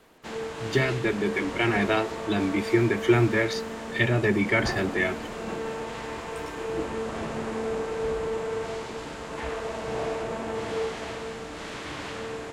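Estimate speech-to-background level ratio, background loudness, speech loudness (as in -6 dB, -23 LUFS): 7.5 dB, -33.0 LUFS, -25.5 LUFS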